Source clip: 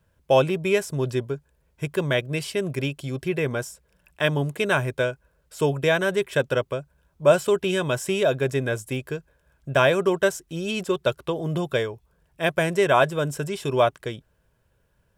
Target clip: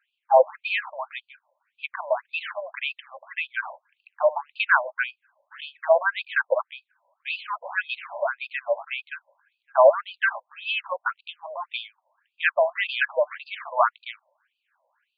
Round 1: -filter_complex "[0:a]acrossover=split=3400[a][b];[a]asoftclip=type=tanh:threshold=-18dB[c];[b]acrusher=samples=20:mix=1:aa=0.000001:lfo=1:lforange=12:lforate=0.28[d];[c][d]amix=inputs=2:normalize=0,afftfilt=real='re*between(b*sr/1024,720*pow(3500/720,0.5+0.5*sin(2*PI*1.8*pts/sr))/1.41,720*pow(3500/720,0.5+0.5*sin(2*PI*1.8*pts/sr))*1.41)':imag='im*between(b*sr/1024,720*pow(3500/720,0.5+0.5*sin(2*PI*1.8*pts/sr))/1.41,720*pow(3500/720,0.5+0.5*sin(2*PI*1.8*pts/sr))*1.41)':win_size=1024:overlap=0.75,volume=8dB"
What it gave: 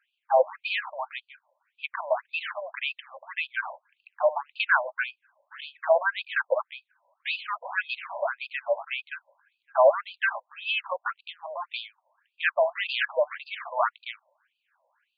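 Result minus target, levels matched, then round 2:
soft clip: distortion +11 dB
-filter_complex "[0:a]acrossover=split=3400[a][b];[a]asoftclip=type=tanh:threshold=-8.5dB[c];[b]acrusher=samples=20:mix=1:aa=0.000001:lfo=1:lforange=12:lforate=0.28[d];[c][d]amix=inputs=2:normalize=0,afftfilt=real='re*between(b*sr/1024,720*pow(3500/720,0.5+0.5*sin(2*PI*1.8*pts/sr))/1.41,720*pow(3500/720,0.5+0.5*sin(2*PI*1.8*pts/sr))*1.41)':imag='im*between(b*sr/1024,720*pow(3500/720,0.5+0.5*sin(2*PI*1.8*pts/sr))/1.41,720*pow(3500/720,0.5+0.5*sin(2*PI*1.8*pts/sr))*1.41)':win_size=1024:overlap=0.75,volume=8dB"

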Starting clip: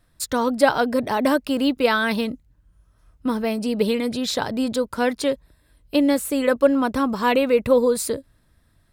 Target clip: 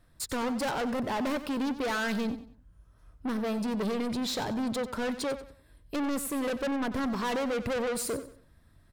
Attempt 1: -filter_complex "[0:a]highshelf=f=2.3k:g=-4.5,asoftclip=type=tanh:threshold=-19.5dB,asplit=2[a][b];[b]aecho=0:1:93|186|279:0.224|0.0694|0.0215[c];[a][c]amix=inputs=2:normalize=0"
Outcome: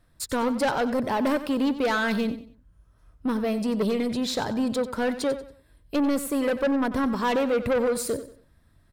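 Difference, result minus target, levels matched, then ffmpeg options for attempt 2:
soft clip: distortion -5 dB
-filter_complex "[0:a]highshelf=f=2.3k:g=-4.5,asoftclip=type=tanh:threshold=-28.5dB,asplit=2[a][b];[b]aecho=0:1:93|186|279:0.224|0.0694|0.0215[c];[a][c]amix=inputs=2:normalize=0"

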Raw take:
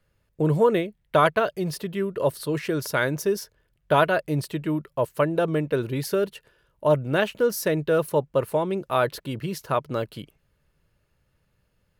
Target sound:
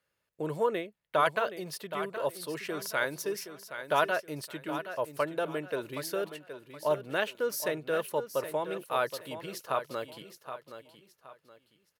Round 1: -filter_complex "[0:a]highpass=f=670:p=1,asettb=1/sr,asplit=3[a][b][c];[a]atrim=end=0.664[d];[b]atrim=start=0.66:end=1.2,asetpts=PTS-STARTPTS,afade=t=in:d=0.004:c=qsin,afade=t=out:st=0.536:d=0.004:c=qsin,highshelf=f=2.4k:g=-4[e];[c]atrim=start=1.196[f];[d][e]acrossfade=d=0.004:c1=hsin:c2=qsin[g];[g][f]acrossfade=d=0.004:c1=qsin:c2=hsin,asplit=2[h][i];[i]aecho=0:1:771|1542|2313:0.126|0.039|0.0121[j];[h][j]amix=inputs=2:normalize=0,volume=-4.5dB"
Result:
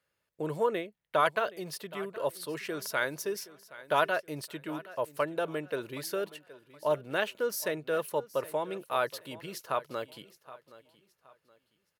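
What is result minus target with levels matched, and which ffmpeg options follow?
echo-to-direct -7.5 dB
-filter_complex "[0:a]highpass=f=670:p=1,asettb=1/sr,asplit=3[a][b][c];[a]atrim=end=0.664[d];[b]atrim=start=0.66:end=1.2,asetpts=PTS-STARTPTS,afade=t=in:d=0.004:c=qsin,afade=t=out:st=0.536:d=0.004:c=qsin,highshelf=f=2.4k:g=-4[e];[c]atrim=start=1.196[f];[d][e]acrossfade=d=0.004:c1=hsin:c2=qsin[g];[g][f]acrossfade=d=0.004:c1=qsin:c2=hsin,asplit=2[h][i];[i]aecho=0:1:771|1542|2313:0.299|0.0925|0.0287[j];[h][j]amix=inputs=2:normalize=0,volume=-4.5dB"

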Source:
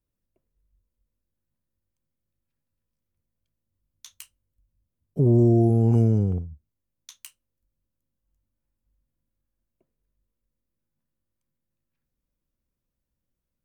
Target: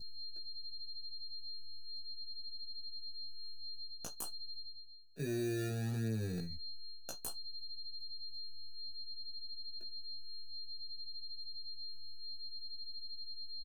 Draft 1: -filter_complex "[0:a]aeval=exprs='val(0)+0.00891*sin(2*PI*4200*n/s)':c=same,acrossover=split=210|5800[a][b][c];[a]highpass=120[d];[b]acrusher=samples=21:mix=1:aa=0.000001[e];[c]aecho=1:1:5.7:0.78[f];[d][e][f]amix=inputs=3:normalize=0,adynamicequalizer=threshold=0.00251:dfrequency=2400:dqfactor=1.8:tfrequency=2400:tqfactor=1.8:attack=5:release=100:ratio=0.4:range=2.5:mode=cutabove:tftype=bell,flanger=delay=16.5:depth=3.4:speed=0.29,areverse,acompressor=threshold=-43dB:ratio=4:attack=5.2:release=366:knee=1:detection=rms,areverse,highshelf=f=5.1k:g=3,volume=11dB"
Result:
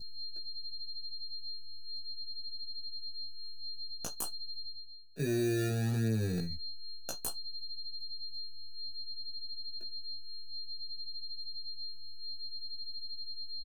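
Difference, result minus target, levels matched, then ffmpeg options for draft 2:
compressor: peak gain reduction -5.5 dB
-filter_complex "[0:a]aeval=exprs='val(0)+0.00891*sin(2*PI*4200*n/s)':c=same,acrossover=split=210|5800[a][b][c];[a]highpass=120[d];[b]acrusher=samples=21:mix=1:aa=0.000001[e];[c]aecho=1:1:5.7:0.78[f];[d][e][f]amix=inputs=3:normalize=0,adynamicequalizer=threshold=0.00251:dfrequency=2400:dqfactor=1.8:tfrequency=2400:tqfactor=1.8:attack=5:release=100:ratio=0.4:range=2.5:mode=cutabove:tftype=bell,flanger=delay=16.5:depth=3.4:speed=0.29,areverse,acompressor=threshold=-50.5dB:ratio=4:attack=5.2:release=366:knee=1:detection=rms,areverse,highshelf=f=5.1k:g=3,volume=11dB"

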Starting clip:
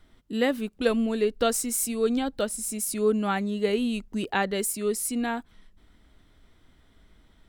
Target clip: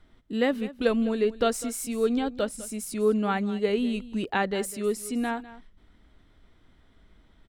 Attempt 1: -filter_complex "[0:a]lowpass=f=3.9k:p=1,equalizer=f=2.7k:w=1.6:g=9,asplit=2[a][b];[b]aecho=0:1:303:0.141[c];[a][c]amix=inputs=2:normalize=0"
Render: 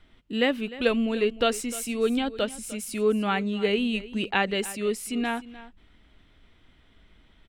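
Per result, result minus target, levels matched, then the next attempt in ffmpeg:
echo 0.101 s late; 2000 Hz band +3.5 dB
-filter_complex "[0:a]lowpass=f=3.9k:p=1,equalizer=f=2.7k:w=1.6:g=9,asplit=2[a][b];[b]aecho=0:1:202:0.141[c];[a][c]amix=inputs=2:normalize=0"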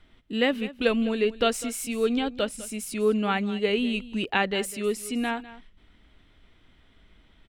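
2000 Hz band +3.5 dB
-filter_complex "[0:a]lowpass=f=3.9k:p=1,asplit=2[a][b];[b]aecho=0:1:202:0.141[c];[a][c]amix=inputs=2:normalize=0"

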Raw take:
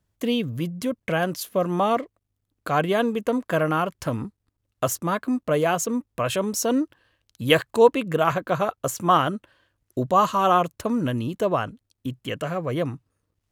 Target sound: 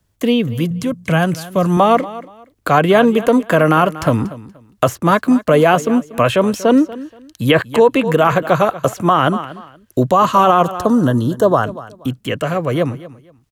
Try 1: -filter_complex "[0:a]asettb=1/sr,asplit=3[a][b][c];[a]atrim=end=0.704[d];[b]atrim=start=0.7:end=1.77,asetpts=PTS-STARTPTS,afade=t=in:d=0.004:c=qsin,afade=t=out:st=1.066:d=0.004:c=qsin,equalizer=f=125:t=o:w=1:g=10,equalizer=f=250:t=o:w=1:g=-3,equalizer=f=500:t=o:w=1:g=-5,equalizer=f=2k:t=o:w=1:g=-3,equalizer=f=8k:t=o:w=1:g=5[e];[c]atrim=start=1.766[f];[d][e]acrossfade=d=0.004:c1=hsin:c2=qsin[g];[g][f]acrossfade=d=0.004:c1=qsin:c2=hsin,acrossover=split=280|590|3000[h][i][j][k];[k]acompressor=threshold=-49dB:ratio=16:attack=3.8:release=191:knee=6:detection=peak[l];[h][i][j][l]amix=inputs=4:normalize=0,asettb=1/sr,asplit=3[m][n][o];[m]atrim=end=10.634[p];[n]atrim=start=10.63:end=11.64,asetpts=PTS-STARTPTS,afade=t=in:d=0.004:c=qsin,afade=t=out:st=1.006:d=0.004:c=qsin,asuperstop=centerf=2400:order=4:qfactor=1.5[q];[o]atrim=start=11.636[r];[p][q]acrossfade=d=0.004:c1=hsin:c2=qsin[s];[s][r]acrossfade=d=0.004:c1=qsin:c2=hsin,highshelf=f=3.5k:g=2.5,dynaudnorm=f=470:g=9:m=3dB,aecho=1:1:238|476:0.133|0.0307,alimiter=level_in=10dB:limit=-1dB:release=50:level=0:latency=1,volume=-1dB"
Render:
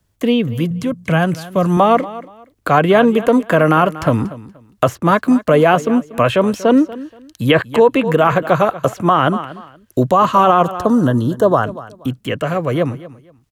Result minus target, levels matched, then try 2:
compressor: peak gain reduction +6 dB
-filter_complex "[0:a]asettb=1/sr,asplit=3[a][b][c];[a]atrim=end=0.704[d];[b]atrim=start=0.7:end=1.77,asetpts=PTS-STARTPTS,afade=t=in:d=0.004:c=qsin,afade=t=out:st=1.066:d=0.004:c=qsin,equalizer=f=125:t=o:w=1:g=10,equalizer=f=250:t=o:w=1:g=-3,equalizer=f=500:t=o:w=1:g=-5,equalizer=f=2k:t=o:w=1:g=-3,equalizer=f=8k:t=o:w=1:g=5[e];[c]atrim=start=1.766[f];[d][e]acrossfade=d=0.004:c1=hsin:c2=qsin[g];[g][f]acrossfade=d=0.004:c1=qsin:c2=hsin,acrossover=split=280|590|3000[h][i][j][k];[k]acompressor=threshold=-42.5dB:ratio=16:attack=3.8:release=191:knee=6:detection=peak[l];[h][i][j][l]amix=inputs=4:normalize=0,asettb=1/sr,asplit=3[m][n][o];[m]atrim=end=10.634[p];[n]atrim=start=10.63:end=11.64,asetpts=PTS-STARTPTS,afade=t=in:d=0.004:c=qsin,afade=t=out:st=1.006:d=0.004:c=qsin,asuperstop=centerf=2400:order=4:qfactor=1.5[q];[o]atrim=start=11.636[r];[p][q]acrossfade=d=0.004:c1=hsin:c2=qsin[s];[s][r]acrossfade=d=0.004:c1=qsin:c2=hsin,highshelf=f=3.5k:g=2.5,dynaudnorm=f=470:g=9:m=3dB,aecho=1:1:238|476:0.133|0.0307,alimiter=level_in=10dB:limit=-1dB:release=50:level=0:latency=1,volume=-1dB"

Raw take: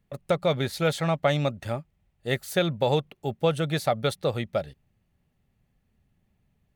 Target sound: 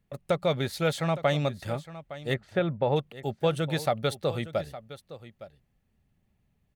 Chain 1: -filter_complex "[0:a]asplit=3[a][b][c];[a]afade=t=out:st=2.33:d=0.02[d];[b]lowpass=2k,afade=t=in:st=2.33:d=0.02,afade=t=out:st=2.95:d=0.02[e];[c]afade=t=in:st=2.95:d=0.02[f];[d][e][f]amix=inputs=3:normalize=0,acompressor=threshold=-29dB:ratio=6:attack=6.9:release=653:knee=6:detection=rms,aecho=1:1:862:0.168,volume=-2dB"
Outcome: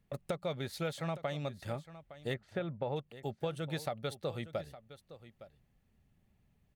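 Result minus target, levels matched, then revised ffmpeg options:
compressor: peak gain reduction +13.5 dB
-filter_complex "[0:a]asplit=3[a][b][c];[a]afade=t=out:st=2.33:d=0.02[d];[b]lowpass=2k,afade=t=in:st=2.33:d=0.02,afade=t=out:st=2.95:d=0.02[e];[c]afade=t=in:st=2.95:d=0.02[f];[d][e][f]amix=inputs=3:normalize=0,aecho=1:1:862:0.168,volume=-2dB"

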